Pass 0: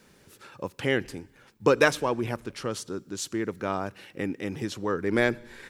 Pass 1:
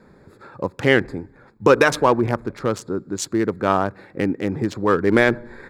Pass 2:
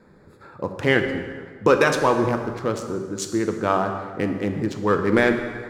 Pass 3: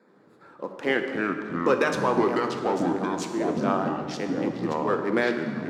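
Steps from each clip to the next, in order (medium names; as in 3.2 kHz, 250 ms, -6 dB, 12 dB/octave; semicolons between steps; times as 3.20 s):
local Wiener filter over 15 samples; dynamic bell 1.2 kHz, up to +4 dB, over -34 dBFS, Q 0.82; loudness maximiser +11 dB; trim -1.5 dB
reverberation RT60 1.7 s, pre-delay 3 ms, DRR 5 dB; trim -3 dB
high-pass 220 Hz 24 dB/octave; treble shelf 6.6 kHz -5.5 dB; ever faster or slower copies 80 ms, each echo -4 st, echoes 3; trim -5.5 dB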